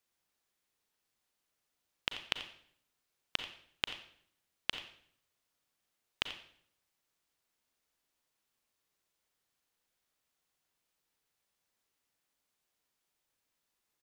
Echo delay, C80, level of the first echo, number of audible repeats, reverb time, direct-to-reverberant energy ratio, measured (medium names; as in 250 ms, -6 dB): 87 ms, 11.0 dB, -14.5 dB, 1, 0.60 s, 7.0 dB